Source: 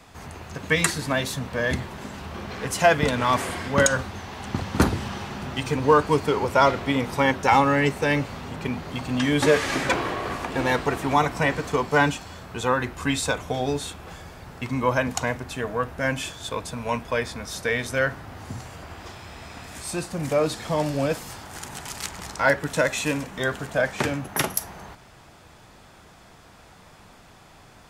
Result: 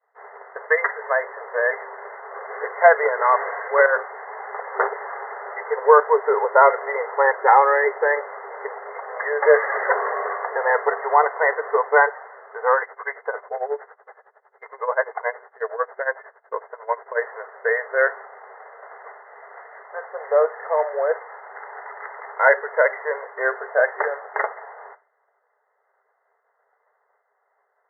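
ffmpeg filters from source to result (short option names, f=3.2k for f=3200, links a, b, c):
-filter_complex "[0:a]asplit=3[a][b][c];[a]afade=t=out:st=12.81:d=0.02[d];[b]tremolo=f=11:d=0.85,afade=t=in:st=12.81:d=0.02,afade=t=out:st=17.2:d=0.02[e];[c]afade=t=in:st=17.2:d=0.02[f];[d][e][f]amix=inputs=3:normalize=0,afftfilt=real='re*between(b*sr/4096,390,2100)':imag='im*between(b*sr/4096,390,2100)':win_size=4096:overlap=0.75,agate=range=-33dB:threshold=-40dB:ratio=3:detection=peak,volume=5dB"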